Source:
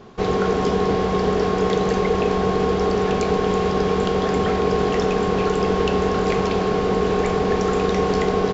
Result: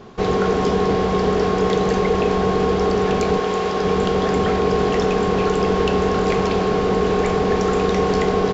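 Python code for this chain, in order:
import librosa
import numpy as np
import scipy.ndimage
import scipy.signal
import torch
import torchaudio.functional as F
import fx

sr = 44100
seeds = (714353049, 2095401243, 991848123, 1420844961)

p1 = fx.low_shelf(x, sr, hz=230.0, db=-11.0, at=(3.39, 3.84))
p2 = 10.0 ** (-21.5 / 20.0) * np.tanh(p1 / 10.0 ** (-21.5 / 20.0))
y = p1 + F.gain(torch.from_numpy(p2), -9.0).numpy()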